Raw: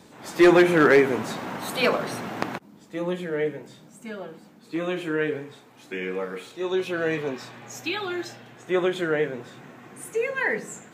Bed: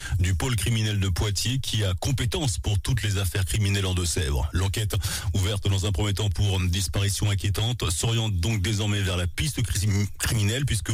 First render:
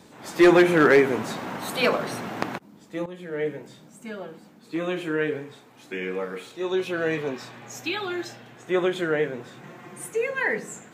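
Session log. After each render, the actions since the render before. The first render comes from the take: 3.06–3.52 fade in, from -16 dB; 9.63–10.07 comb 5.7 ms, depth 83%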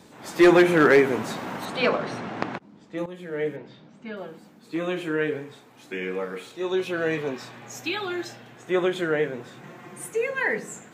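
1.65–2.98 air absorption 100 m; 3.56–4.17 LPF 4400 Hz 24 dB/oct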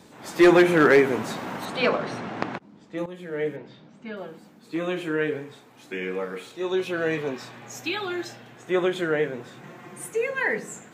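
nothing audible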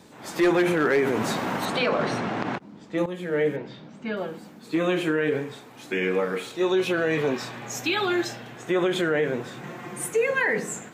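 AGC gain up to 6 dB; limiter -15 dBFS, peak gain reduction 11 dB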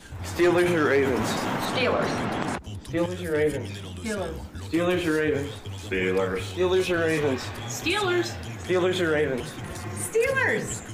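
add bed -13 dB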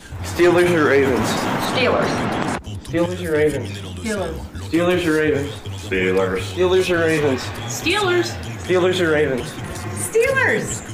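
gain +6.5 dB

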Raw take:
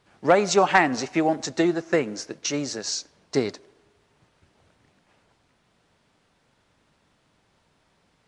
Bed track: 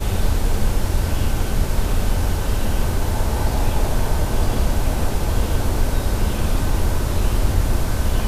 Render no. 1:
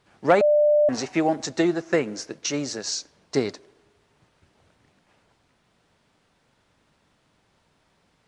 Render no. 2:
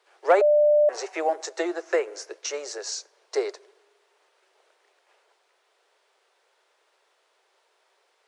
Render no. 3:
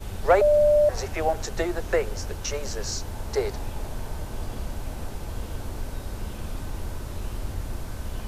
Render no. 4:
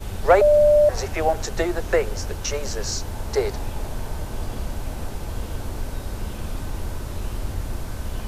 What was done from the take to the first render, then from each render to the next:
0.41–0.89 bleep 595 Hz -14.5 dBFS
steep high-pass 370 Hz 72 dB/oct; dynamic EQ 3700 Hz, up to -6 dB, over -43 dBFS, Q 0.81
add bed track -13.5 dB
gain +3.5 dB

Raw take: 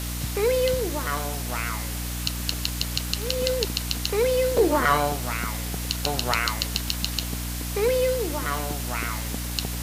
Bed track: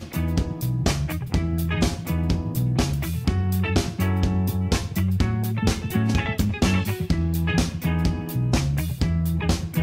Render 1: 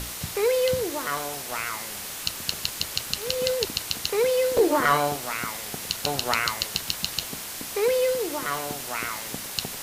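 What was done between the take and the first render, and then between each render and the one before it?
notches 60/120/180/240/300 Hz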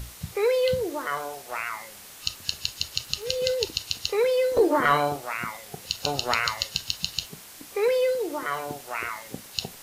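noise print and reduce 10 dB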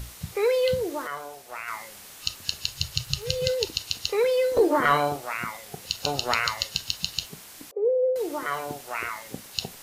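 1.07–1.68 gain -5 dB; 2.71–3.48 resonant low shelf 180 Hz +8 dB, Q 3; 7.71–8.16 Butterworth band-pass 490 Hz, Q 2.3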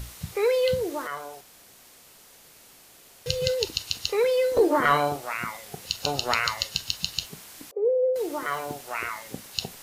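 1.41–3.26 room tone; 8.14–8.95 block floating point 7-bit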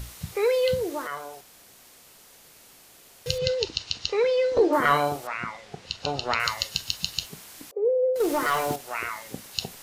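3.38–4.73 LPF 6000 Hz 24 dB/oct; 5.27–6.4 air absorption 120 m; 8.2–8.76 sample leveller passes 2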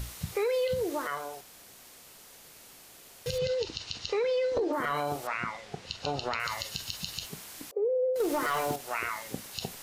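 limiter -17.5 dBFS, peak gain reduction 10.5 dB; compressor 3:1, threshold -27 dBFS, peak gain reduction 5.5 dB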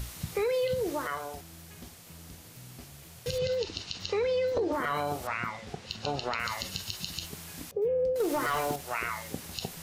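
add bed track -27 dB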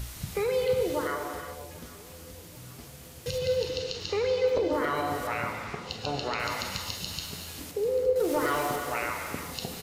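feedback echo 0.791 s, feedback 53%, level -21 dB; non-linear reverb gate 0.42 s flat, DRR 3.5 dB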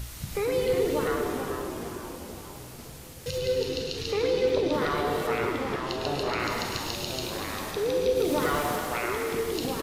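frequency-shifting echo 0.104 s, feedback 53%, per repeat -120 Hz, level -9 dB; echoes that change speed 0.314 s, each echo -2 st, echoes 3, each echo -6 dB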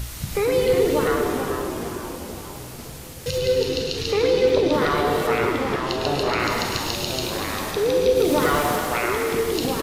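gain +6.5 dB

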